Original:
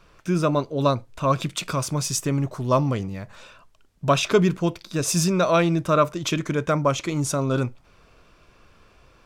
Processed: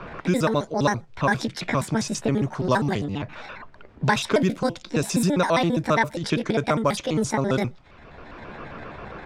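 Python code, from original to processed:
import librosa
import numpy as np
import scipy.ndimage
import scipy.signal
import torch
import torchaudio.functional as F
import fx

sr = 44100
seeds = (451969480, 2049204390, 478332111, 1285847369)

y = fx.pitch_trill(x, sr, semitones=7.0, every_ms=67)
y = fx.env_lowpass(y, sr, base_hz=1700.0, full_db=-17.0)
y = fx.band_squash(y, sr, depth_pct=70)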